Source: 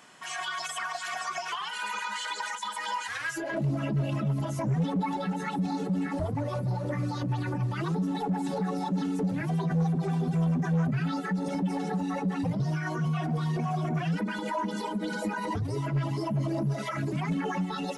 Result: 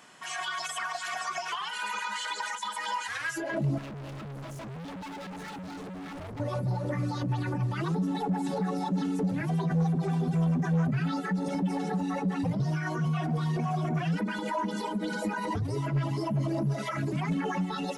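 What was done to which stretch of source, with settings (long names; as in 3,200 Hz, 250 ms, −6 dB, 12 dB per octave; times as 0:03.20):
0:03.78–0:06.40: hard clipping −39 dBFS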